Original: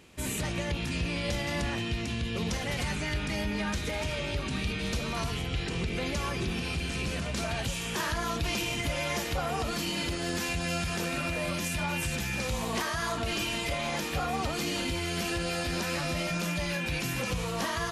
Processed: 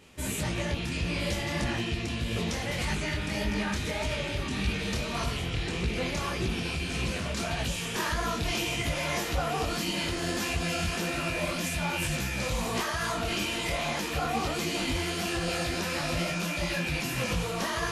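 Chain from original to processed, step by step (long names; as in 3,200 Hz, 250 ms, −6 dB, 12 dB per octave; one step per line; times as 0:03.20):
feedback echo with a high-pass in the loop 1,006 ms, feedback 65%, level −13 dB
micro pitch shift up and down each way 59 cents
level +4.5 dB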